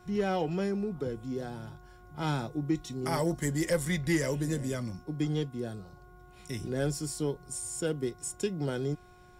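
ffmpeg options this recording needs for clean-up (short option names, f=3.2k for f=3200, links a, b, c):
-af "bandreject=f=361.3:t=h:w=4,bandreject=f=722.6:t=h:w=4,bandreject=f=1.0839k:t=h:w=4,bandreject=f=1.4452k:t=h:w=4"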